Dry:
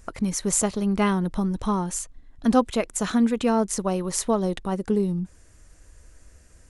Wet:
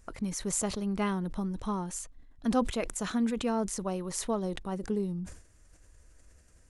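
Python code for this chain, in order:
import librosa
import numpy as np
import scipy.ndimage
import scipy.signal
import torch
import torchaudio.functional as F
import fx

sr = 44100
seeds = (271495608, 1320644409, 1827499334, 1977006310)

y = fx.sustainer(x, sr, db_per_s=100.0)
y = y * librosa.db_to_amplitude(-8.5)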